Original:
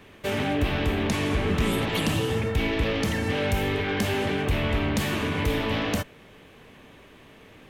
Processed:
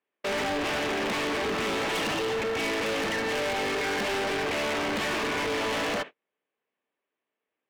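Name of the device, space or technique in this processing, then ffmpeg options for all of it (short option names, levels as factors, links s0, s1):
walkie-talkie: -af "highpass=400,lowpass=3000,asoftclip=type=hard:threshold=0.0168,agate=range=0.00794:threshold=0.00562:ratio=16:detection=peak,volume=2.66"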